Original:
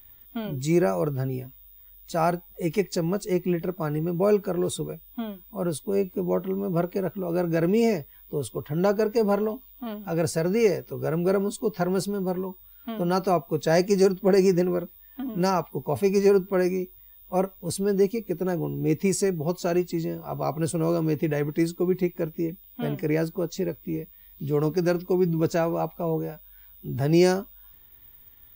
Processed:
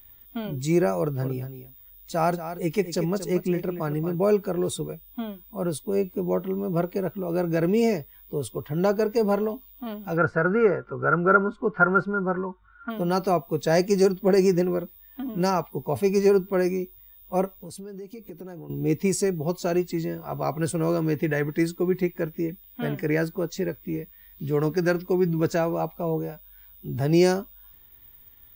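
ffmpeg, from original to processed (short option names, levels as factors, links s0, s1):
-filter_complex "[0:a]asettb=1/sr,asplit=3[s0][s1][s2];[s0]atrim=end=0.984[s3];[s1]atrim=start=0.98:end=4.15,asetpts=PTS-STARTPTS,afade=t=in:d=0.004:c=qsin,afade=t=out:st=3.166:d=0.004:c=qsin,aecho=1:1:232:0.282,atrim=end_sample=139797[s4];[s2]atrim=start=4.146[s5];[s3][s4]acrossfade=d=0.004:c1=hsin:c2=qsin[s6];[s6][s5]acrossfade=d=0.004:c1=qsin:c2=hsin,asplit=3[s7][s8][s9];[s7]afade=t=out:st=10.16:d=0.02[s10];[s8]lowpass=f=1400:t=q:w=11,afade=t=in:st=10.16:d=0.02,afade=t=out:st=12.89:d=0.02[s11];[s9]afade=t=in:st=12.89:d=0.02[s12];[s10][s11][s12]amix=inputs=3:normalize=0,asettb=1/sr,asplit=3[s13][s14][s15];[s13]atrim=end=17.504[s16];[s14]atrim=start=17.5:end=18.7,asetpts=PTS-STARTPTS,afade=t=in:d=0.004:c=qsin,afade=t=out:st=1.196:d=0.004:c=qsin,acompressor=threshold=0.0158:ratio=8:attack=3.2:release=140:knee=1:detection=peak[s17];[s15]atrim=start=18.696[s18];[s16][s17]acrossfade=d=0.004:c1=hsin:c2=qsin[s19];[s19][s18]acrossfade=d=0.004:c1=qsin:c2=hsin,asettb=1/sr,asplit=3[s20][s21][s22];[s20]atrim=end=19.874[s23];[s21]atrim=start=19.87:end=25.56,asetpts=PTS-STARTPTS,afade=t=in:d=0.004:c=qsin,afade=t=out:st=5.686:d=0.004:c=qsin,equalizer=f=1700:w=2.7:g=8.5[s24];[s22]atrim=start=25.556[s25];[s23][s24]acrossfade=d=0.004:c1=hsin:c2=qsin[s26];[s26][s25]acrossfade=d=0.004:c1=qsin:c2=hsin"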